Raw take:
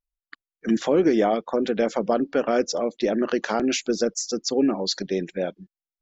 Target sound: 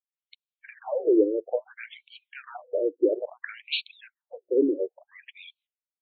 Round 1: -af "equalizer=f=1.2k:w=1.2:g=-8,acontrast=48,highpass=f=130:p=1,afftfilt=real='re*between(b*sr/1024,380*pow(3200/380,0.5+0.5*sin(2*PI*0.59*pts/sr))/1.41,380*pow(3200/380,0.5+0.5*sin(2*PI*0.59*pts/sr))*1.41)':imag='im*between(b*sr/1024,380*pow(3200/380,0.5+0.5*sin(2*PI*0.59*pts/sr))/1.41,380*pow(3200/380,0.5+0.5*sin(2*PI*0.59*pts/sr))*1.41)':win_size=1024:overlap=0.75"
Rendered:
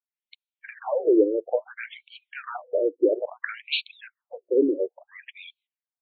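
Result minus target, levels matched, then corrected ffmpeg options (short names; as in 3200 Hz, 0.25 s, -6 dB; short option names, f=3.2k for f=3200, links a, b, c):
1000 Hz band +4.0 dB
-af "equalizer=f=1.2k:w=1.2:g=-18.5,acontrast=48,highpass=f=130:p=1,afftfilt=real='re*between(b*sr/1024,380*pow(3200/380,0.5+0.5*sin(2*PI*0.59*pts/sr))/1.41,380*pow(3200/380,0.5+0.5*sin(2*PI*0.59*pts/sr))*1.41)':imag='im*between(b*sr/1024,380*pow(3200/380,0.5+0.5*sin(2*PI*0.59*pts/sr))/1.41,380*pow(3200/380,0.5+0.5*sin(2*PI*0.59*pts/sr))*1.41)':win_size=1024:overlap=0.75"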